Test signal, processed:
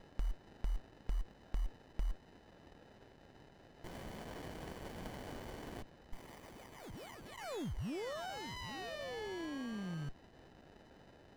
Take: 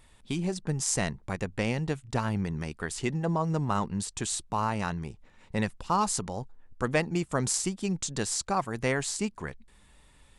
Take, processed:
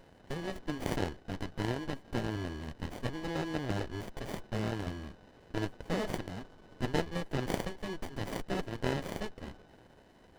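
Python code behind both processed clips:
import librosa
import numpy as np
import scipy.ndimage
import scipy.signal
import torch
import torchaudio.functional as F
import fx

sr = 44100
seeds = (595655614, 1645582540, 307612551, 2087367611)

y = fx.dmg_noise_band(x, sr, seeds[0], low_hz=75.0, high_hz=730.0, level_db=-53.0)
y = y * np.sin(2.0 * np.pi * 1500.0 * np.arange(len(y)) / sr)
y = fx.running_max(y, sr, window=33)
y = y * librosa.db_to_amplitude(-2.5)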